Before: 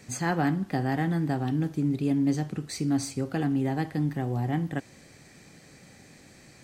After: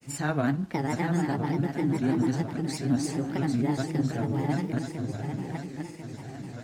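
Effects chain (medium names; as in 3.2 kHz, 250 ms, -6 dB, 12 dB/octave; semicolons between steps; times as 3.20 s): shuffle delay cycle 1038 ms, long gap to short 3:1, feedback 48%, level -6.5 dB; granulator, spray 15 ms, pitch spread up and down by 3 st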